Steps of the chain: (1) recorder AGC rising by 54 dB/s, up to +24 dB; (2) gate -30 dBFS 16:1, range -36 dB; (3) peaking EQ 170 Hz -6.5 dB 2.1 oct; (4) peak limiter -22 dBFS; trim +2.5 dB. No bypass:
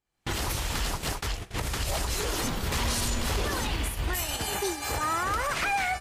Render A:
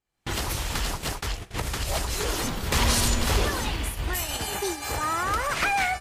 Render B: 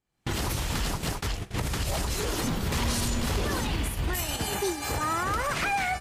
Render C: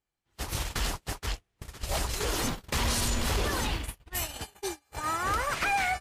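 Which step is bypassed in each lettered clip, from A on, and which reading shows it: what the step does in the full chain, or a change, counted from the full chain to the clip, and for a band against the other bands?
4, mean gain reduction 1.5 dB; 3, 250 Hz band +4.0 dB; 1, crest factor change +2.0 dB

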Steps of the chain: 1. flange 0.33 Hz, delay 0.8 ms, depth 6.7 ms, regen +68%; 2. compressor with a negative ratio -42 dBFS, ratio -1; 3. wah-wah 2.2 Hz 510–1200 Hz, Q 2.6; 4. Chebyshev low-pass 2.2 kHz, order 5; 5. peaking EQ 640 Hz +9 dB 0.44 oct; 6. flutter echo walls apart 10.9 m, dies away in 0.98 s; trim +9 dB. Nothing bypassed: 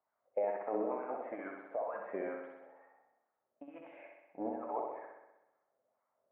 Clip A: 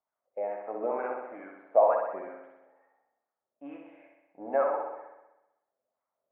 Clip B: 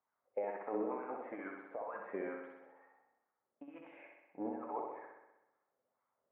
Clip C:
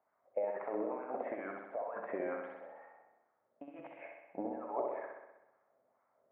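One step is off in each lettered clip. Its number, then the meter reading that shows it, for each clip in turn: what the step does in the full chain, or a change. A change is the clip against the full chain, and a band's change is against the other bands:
2, crest factor change +3.5 dB; 5, 500 Hz band -3.5 dB; 1, 2 kHz band +2.0 dB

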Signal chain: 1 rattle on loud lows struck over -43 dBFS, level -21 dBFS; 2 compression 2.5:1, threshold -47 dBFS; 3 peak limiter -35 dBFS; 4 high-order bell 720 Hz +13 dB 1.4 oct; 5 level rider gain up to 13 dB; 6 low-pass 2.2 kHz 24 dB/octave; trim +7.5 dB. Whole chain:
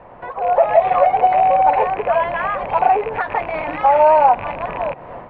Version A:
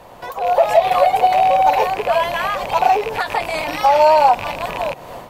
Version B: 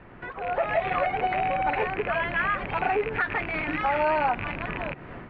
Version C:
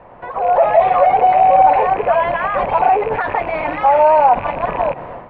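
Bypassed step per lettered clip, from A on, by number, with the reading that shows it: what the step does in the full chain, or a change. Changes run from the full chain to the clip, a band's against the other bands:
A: 6, 2 kHz band +2.0 dB; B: 4, 1 kHz band -12.0 dB; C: 2, mean gain reduction 11.5 dB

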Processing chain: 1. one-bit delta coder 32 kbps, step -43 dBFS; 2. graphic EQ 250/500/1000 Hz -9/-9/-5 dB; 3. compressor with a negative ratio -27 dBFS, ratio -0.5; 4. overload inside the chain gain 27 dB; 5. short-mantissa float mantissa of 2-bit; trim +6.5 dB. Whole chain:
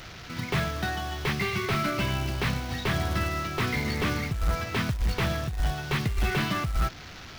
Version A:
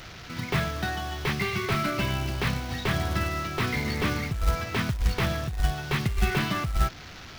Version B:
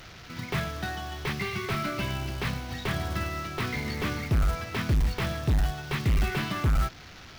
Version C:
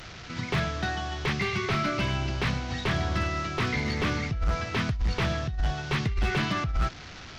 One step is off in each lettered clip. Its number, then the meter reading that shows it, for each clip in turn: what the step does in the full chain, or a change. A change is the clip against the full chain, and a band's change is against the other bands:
4, distortion -14 dB; 3, momentary loudness spread change +3 LU; 5, distortion -20 dB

